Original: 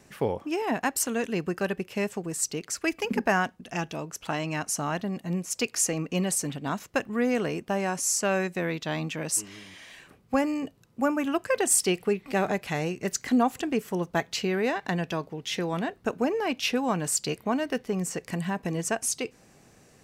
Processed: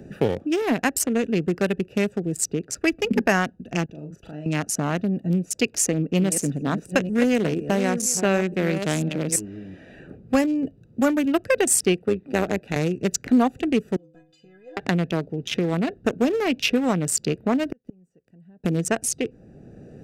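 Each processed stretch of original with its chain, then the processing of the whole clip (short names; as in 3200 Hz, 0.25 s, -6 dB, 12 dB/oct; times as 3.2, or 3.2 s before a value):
3.85–4.46 level quantiser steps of 23 dB + doubler 40 ms -4.5 dB
5.65–9.36 reverse delay 0.482 s, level -9 dB + echo 0.765 s -23 dB
11.96–12.76 HPF 150 Hz + AM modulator 110 Hz, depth 35%
13.96–14.77 tilt +2 dB/oct + compressor 5:1, threshold -39 dBFS + metallic resonator 150 Hz, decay 0.43 s, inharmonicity 0.03
17.68–18.64 high shelf 9900 Hz +8.5 dB + sample leveller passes 1 + flipped gate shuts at -22 dBFS, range -40 dB
whole clip: Wiener smoothing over 41 samples; bell 950 Hz -6 dB 0.82 oct; three-band squash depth 40%; gain +7.5 dB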